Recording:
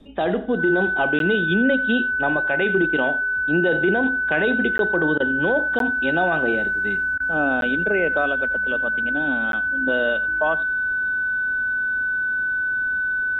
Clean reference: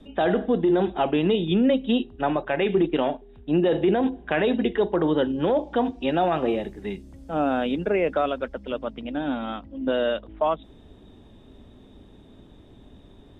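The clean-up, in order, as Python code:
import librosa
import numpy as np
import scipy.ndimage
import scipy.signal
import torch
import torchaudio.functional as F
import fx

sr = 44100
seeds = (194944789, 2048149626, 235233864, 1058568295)

y = fx.notch(x, sr, hz=1500.0, q=30.0)
y = fx.fix_interpolate(y, sr, at_s=(1.19, 4.78, 5.79, 7.61, 9.52), length_ms=12.0)
y = fx.fix_interpolate(y, sr, at_s=(5.18, 7.18), length_ms=20.0)
y = fx.fix_echo_inverse(y, sr, delay_ms=87, level_db=-19.0)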